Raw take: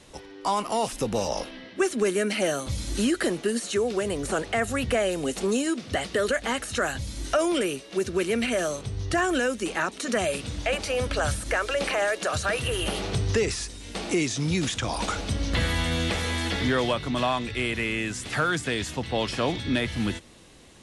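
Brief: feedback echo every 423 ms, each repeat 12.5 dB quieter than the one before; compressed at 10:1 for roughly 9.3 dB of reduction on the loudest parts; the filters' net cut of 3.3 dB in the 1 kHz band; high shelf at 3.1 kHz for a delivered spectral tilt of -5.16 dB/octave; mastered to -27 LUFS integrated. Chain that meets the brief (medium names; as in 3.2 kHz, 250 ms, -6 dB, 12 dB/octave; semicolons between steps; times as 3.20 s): peaking EQ 1 kHz -3.5 dB; treble shelf 3.1 kHz -9 dB; compression 10:1, threshold -30 dBFS; feedback delay 423 ms, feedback 24%, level -12.5 dB; trim +7.5 dB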